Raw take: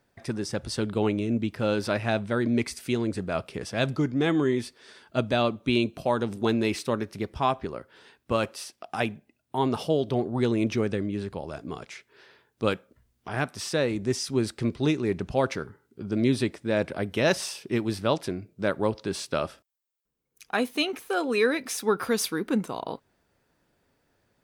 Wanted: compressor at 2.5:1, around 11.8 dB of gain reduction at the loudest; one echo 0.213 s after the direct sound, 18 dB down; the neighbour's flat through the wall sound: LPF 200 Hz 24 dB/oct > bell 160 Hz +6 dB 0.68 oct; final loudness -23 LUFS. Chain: compressor 2.5:1, threshold -38 dBFS; LPF 200 Hz 24 dB/oct; bell 160 Hz +6 dB 0.68 oct; echo 0.213 s -18 dB; gain +20.5 dB

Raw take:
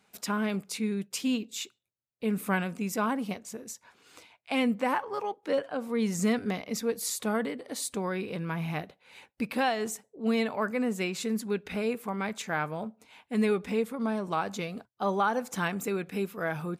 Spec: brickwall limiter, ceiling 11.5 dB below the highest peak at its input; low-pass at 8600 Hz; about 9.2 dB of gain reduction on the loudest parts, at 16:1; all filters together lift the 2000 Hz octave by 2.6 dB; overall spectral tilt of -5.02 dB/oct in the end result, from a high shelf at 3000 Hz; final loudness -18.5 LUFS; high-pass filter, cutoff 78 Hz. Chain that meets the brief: HPF 78 Hz; LPF 8600 Hz; bell 2000 Hz +6.5 dB; high shelf 3000 Hz -8.5 dB; compressor 16:1, threshold -31 dBFS; gain +20.5 dB; limiter -8.5 dBFS

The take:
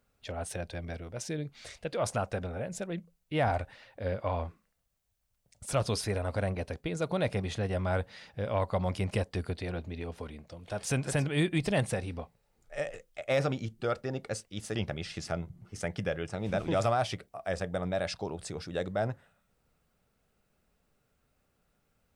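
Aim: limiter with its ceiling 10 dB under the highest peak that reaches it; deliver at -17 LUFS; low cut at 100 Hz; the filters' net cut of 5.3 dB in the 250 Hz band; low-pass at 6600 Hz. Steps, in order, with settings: HPF 100 Hz; LPF 6600 Hz; bell 250 Hz -8 dB; gain +22.5 dB; limiter -4 dBFS

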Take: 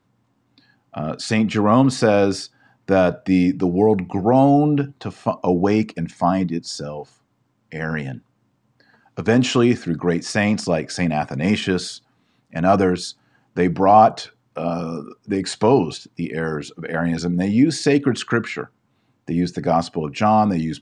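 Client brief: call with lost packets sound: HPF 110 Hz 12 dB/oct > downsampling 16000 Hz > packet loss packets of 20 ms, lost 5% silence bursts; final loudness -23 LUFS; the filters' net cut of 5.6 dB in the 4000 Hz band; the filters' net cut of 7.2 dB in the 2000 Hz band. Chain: HPF 110 Hz 12 dB/oct; bell 2000 Hz -8.5 dB; bell 4000 Hz -5 dB; downsampling 16000 Hz; packet loss packets of 20 ms, lost 5% silence bursts; gain -2.5 dB

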